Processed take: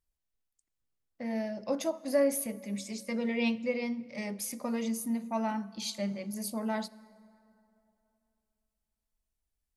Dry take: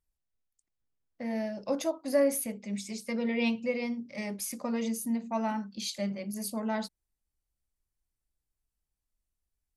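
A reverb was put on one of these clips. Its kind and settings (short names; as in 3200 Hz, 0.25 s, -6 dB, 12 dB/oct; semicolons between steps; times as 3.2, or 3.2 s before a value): plate-style reverb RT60 2.9 s, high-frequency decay 0.55×, DRR 19 dB; gain -1 dB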